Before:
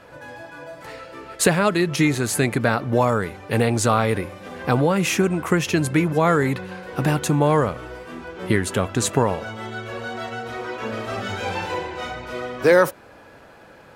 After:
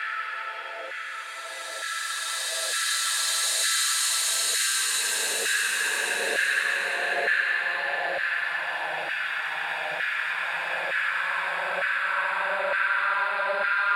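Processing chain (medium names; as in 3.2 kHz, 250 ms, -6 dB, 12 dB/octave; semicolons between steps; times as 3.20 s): high-order bell 2.4 kHz +8 dB; in parallel at +3 dB: peak limiter -8 dBFS, peak gain reduction 9 dB; on the sum: compression 4:1, threshold -19 dBFS, peak gain reduction 13 dB; Paulstretch 49×, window 0.10 s, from 1.34 s; LFO high-pass saw down 1.1 Hz 620–1600 Hz; trim -7.5 dB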